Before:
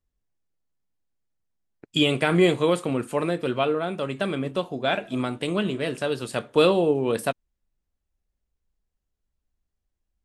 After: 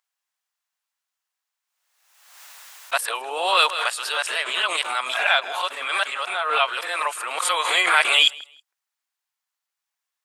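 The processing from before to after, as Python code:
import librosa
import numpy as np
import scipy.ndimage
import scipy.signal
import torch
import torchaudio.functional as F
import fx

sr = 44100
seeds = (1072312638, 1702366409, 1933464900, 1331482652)

p1 = np.flip(x).copy()
p2 = scipy.signal.sosfilt(scipy.signal.butter(4, 900.0, 'highpass', fs=sr, output='sos'), p1)
p3 = p2 + fx.echo_feedback(p2, sr, ms=160, feedback_pct=22, wet_db=-22.5, dry=0)
p4 = fx.pre_swell(p3, sr, db_per_s=50.0)
y = p4 * 10.0 ** (8.5 / 20.0)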